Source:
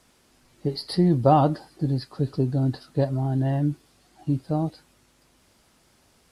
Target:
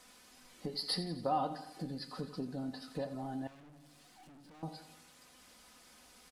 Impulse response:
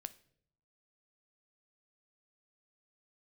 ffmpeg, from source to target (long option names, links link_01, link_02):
-filter_complex "[0:a]acompressor=threshold=-35dB:ratio=3,lowshelf=frequency=500:gain=-9,aecho=1:1:4:0.55,aecho=1:1:87|174|261|348|435|522:0.224|0.123|0.0677|0.0372|0.0205|0.0113[link_01];[1:a]atrim=start_sample=2205,asetrate=79380,aresample=44100[link_02];[link_01][link_02]afir=irnorm=-1:irlink=0,asettb=1/sr,asplit=3[link_03][link_04][link_05];[link_03]atrim=end=3.474[link_06];[link_04]atrim=start=3.47:end=4.63,asetpts=PTS-STARTPTS,afade=type=in:duration=0.004:curve=qsin,afade=type=out:start_time=1.156:duration=0.004:curve=qsin,aeval=exprs='(tanh(2240*val(0)+0.3)-tanh(0.3))/2240':channel_layout=same[link_07];[link_05]atrim=start=4.626[link_08];[link_06][link_07]acrossfade=duration=0.004:curve1=hsin:curve2=qsin[link_09];[link_09][link_08]acrossfade=duration=0.004:curve1=qsin:curve2=hsin,volume=11dB"